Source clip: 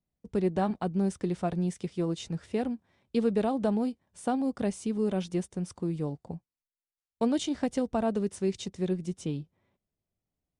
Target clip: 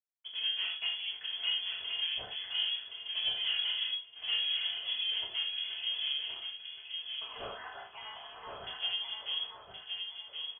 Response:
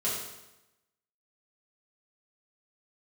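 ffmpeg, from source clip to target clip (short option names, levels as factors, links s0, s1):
-filter_complex "[0:a]acontrast=67,alimiter=limit=0.15:level=0:latency=1:release=324,acompressor=threshold=0.0562:ratio=8,acrusher=bits=7:mix=0:aa=0.5,asettb=1/sr,asplit=3[s0][s1][s2];[s0]atrim=end=6.334[s3];[s1]atrim=start=6.33:end=8.52,asetpts=PTS-STARTPTS,afade=t=in:d=0.004:c=qsin,afade=t=out:st=2.186:d=0.004:c=qsin,highpass=f=2500:t=q:w=4.6[s4];[s2]atrim=start=8.516[s5];[s3][s4]acrossfade=d=0.004:c1=hsin:c2=qsin[s6];[s6][s5]acrossfade=d=0.004:c1=qsin:c2=hsin,volume=29.9,asoftclip=hard,volume=0.0335,afreqshift=-170,aecho=1:1:1071|2142|3213|4284:0.562|0.152|0.041|0.0111[s7];[1:a]atrim=start_sample=2205,atrim=end_sample=6615,asetrate=57330,aresample=44100[s8];[s7][s8]afir=irnorm=-1:irlink=0,lowpass=f=2900:t=q:w=0.5098,lowpass=f=2900:t=q:w=0.6013,lowpass=f=2900:t=q:w=0.9,lowpass=f=2900:t=q:w=2.563,afreqshift=-3400,volume=0.562"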